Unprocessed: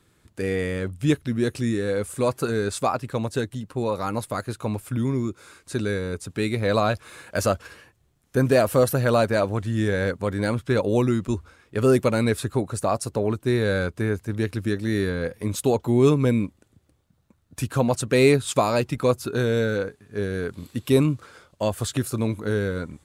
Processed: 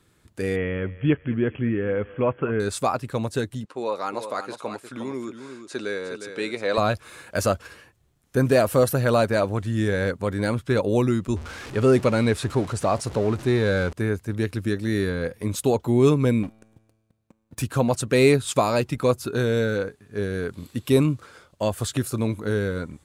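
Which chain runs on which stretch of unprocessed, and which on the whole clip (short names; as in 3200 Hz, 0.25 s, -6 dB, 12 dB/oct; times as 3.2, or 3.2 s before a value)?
0.56–2.6 brick-wall FIR low-pass 3400 Hz + thinning echo 0.209 s, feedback 50%, high-pass 480 Hz, level -17 dB
3.65–6.78 BPF 360–7000 Hz + echo 0.358 s -9 dB
11.36–13.93 zero-crossing step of -32 dBFS + Bessel low-pass 6900 Hz
16.43–17.62 sample leveller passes 3 + resonator 110 Hz, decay 1.5 s
whole clip: dry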